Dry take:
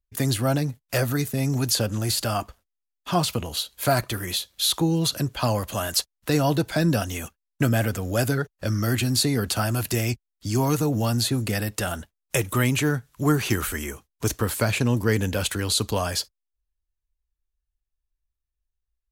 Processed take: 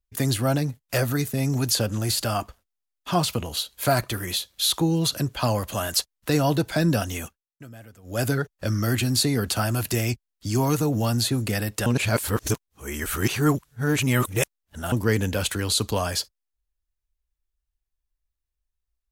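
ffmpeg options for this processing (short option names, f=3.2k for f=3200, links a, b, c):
-filter_complex "[0:a]asplit=5[a][b][c][d][e];[a]atrim=end=7.46,asetpts=PTS-STARTPTS,afade=t=out:st=7.23:d=0.23:silence=0.0794328[f];[b]atrim=start=7.46:end=8.03,asetpts=PTS-STARTPTS,volume=-22dB[g];[c]atrim=start=8.03:end=11.862,asetpts=PTS-STARTPTS,afade=t=in:d=0.23:silence=0.0794328[h];[d]atrim=start=11.858:end=14.922,asetpts=PTS-STARTPTS,areverse[i];[e]atrim=start=14.918[j];[f][g][h]concat=n=3:v=0:a=1[k];[k][i]acrossfade=d=0.004:c1=hsin:c2=hsin[l];[l][j]acrossfade=d=0.004:c1=hsin:c2=hsin"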